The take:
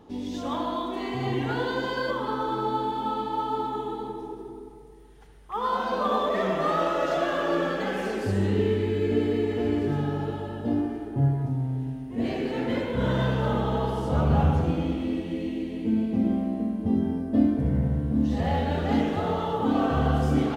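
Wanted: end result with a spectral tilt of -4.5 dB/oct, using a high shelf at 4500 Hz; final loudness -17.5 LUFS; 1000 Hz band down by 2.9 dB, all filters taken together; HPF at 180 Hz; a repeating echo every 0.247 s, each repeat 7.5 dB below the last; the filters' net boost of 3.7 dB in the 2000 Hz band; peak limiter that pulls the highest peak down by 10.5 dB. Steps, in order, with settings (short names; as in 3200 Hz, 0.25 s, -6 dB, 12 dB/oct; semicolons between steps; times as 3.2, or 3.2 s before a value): HPF 180 Hz; bell 1000 Hz -5.5 dB; bell 2000 Hz +5.5 dB; high shelf 4500 Hz +8.5 dB; limiter -21 dBFS; feedback echo 0.247 s, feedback 42%, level -7.5 dB; gain +12 dB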